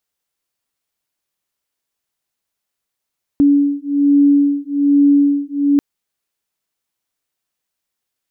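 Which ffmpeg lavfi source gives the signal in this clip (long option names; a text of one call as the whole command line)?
ffmpeg -f lavfi -i "aevalsrc='0.224*(sin(2*PI*284*t)+sin(2*PI*285.2*t))':duration=2.39:sample_rate=44100" out.wav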